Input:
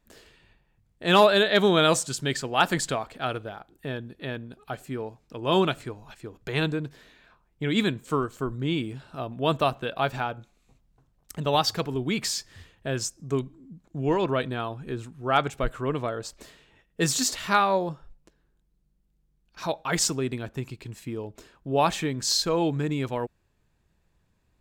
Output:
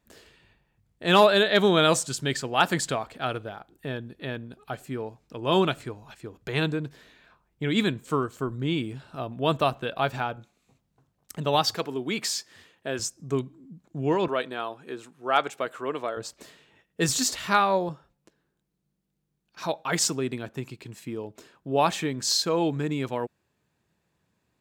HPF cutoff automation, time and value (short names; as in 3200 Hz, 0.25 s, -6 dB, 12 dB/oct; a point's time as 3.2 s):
48 Hz
from 10.36 s 100 Hz
from 11.75 s 240 Hz
from 12.99 s 94 Hz
from 14.28 s 350 Hz
from 16.17 s 110 Hz
from 17.09 s 43 Hz
from 17.89 s 130 Hz